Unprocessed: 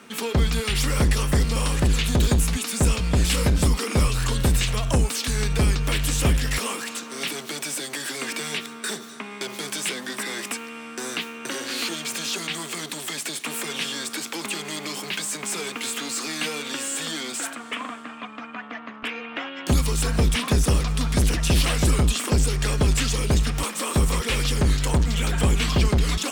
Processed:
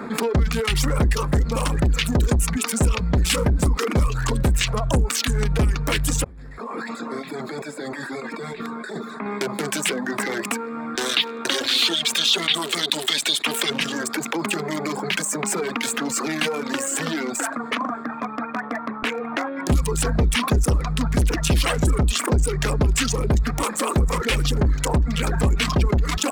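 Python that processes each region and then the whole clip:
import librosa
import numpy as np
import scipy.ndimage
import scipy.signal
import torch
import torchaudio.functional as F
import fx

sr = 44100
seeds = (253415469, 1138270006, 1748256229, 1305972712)

y = fx.chain(x, sr, fx.over_compress(threshold_db=-34.0, ratio=-1.0),
    fx.comb_fb(f0_hz=89.0, decay_s=1.3, harmonics='all', damping=0.0, mix_pct=70), at=(6.24, 9.26))
y = fx.chain(y, sr, fx.highpass(hz=260.0, slope=6),
    fx.peak_eq(hz=3600.0, db=13.5, octaves=0.51), at=(10.95, 13.7))
y = fx.wiener(y, sr, points=15)
y = fx.dereverb_blind(y, sr, rt60_s=1.1)
y = fx.env_flatten(y, sr, amount_pct=50)
y = F.gain(torch.from_numpy(y), 1.0).numpy()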